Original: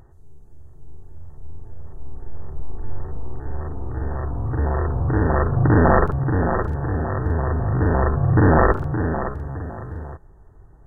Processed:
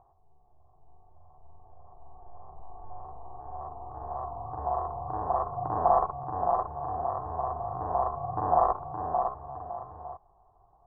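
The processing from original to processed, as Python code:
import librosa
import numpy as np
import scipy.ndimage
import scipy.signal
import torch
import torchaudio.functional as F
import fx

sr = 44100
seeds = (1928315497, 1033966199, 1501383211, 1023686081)

p1 = fx.peak_eq(x, sr, hz=250.0, db=-5.0, octaves=0.48)
p2 = fx.rider(p1, sr, range_db=4, speed_s=0.5)
p3 = p1 + (p2 * librosa.db_to_amplitude(0.0))
y = fx.formant_cascade(p3, sr, vowel='a')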